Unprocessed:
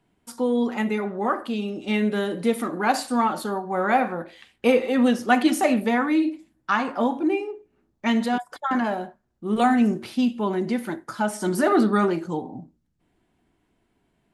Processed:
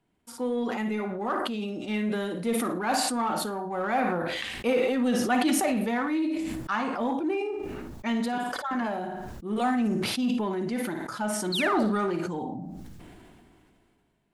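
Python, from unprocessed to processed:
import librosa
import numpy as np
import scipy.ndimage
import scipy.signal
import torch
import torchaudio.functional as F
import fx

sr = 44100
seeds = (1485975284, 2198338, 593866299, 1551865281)

p1 = fx.spec_paint(x, sr, seeds[0], shape='fall', start_s=11.52, length_s=0.31, low_hz=510.0, high_hz=4600.0, level_db=-22.0)
p2 = fx.room_flutter(p1, sr, wall_m=9.6, rt60_s=0.31)
p3 = np.clip(p2, -10.0 ** (-23.0 / 20.0), 10.0 ** (-23.0 / 20.0))
p4 = p2 + (p3 * librosa.db_to_amplitude(-9.5))
p5 = fx.sustainer(p4, sr, db_per_s=23.0)
y = p5 * librosa.db_to_amplitude(-8.5)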